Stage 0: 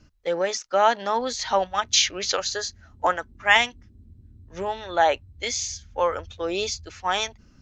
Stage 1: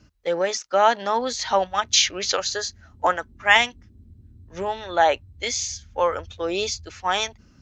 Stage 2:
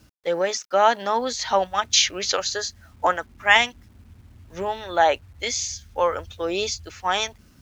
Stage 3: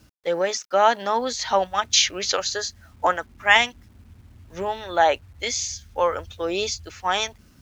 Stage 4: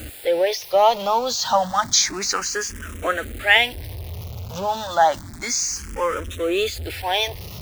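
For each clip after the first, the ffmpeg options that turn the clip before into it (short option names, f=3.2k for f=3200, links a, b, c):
-af "highpass=41,volume=1.5dB"
-af "acrusher=bits=9:mix=0:aa=0.000001"
-af anull
-filter_complex "[0:a]aeval=exprs='val(0)+0.5*0.0422*sgn(val(0))':c=same,asplit=2[a][b];[b]afreqshift=0.3[c];[a][c]amix=inputs=2:normalize=1,volume=2.5dB"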